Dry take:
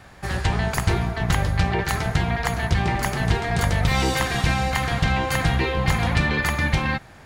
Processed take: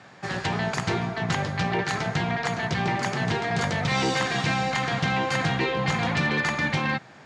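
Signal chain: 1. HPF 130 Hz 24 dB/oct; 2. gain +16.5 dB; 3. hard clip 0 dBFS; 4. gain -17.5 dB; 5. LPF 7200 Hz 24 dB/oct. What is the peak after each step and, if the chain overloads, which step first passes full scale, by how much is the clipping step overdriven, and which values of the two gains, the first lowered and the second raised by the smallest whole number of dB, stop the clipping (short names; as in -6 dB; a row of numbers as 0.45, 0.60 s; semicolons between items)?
-7.5, +9.0, 0.0, -17.5, -16.0 dBFS; step 2, 9.0 dB; step 2 +7.5 dB, step 4 -8.5 dB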